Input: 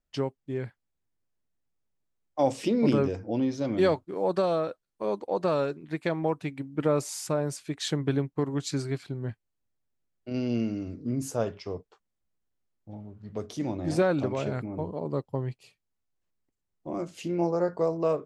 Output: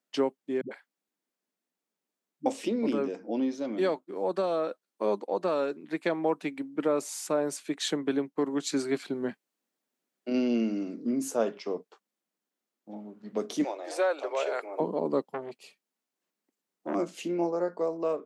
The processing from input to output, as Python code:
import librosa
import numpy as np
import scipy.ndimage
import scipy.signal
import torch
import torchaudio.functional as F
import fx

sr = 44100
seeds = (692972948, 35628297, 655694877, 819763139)

y = fx.dispersion(x, sr, late='highs', ms=102.0, hz=310.0, at=(0.61, 2.46))
y = fx.steep_highpass(y, sr, hz=440.0, slope=36, at=(13.64, 14.8))
y = fx.transformer_sat(y, sr, knee_hz=1300.0, at=(15.31, 16.95))
y = scipy.signal.sosfilt(scipy.signal.butter(6, 200.0, 'highpass', fs=sr, output='sos'), y)
y = fx.dynamic_eq(y, sr, hz=5000.0, q=4.6, threshold_db=-58.0, ratio=4.0, max_db=-4)
y = fx.rider(y, sr, range_db=10, speed_s=0.5)